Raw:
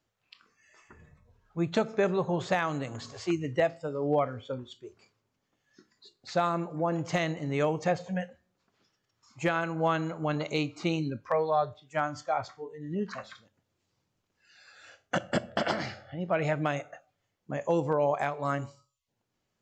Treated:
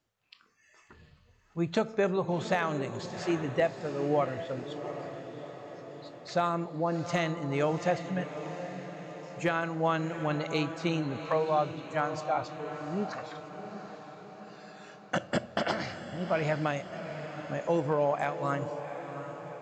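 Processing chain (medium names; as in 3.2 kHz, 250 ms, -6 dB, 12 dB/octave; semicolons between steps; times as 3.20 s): echo that smears into a reverb 737 ms, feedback 58%, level -10 dB; trim -1 dB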